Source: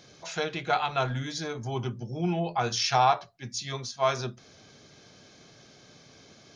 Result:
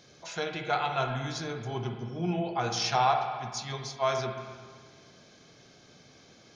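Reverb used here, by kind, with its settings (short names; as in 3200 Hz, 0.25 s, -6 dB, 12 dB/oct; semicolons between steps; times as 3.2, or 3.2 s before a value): spring tank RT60 1.7 s, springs 43/50/56 ms, chirp 75 ms, DRR 4.5 dB; gain -3 dB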